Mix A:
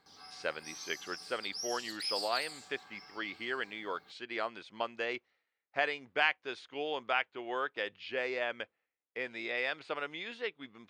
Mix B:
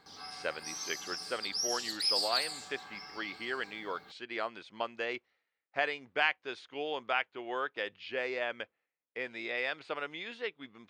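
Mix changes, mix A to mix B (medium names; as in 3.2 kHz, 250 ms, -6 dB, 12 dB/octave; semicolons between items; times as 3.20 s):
background +7.0 dB; master: add treble shelf 11 kHz -3.5 dB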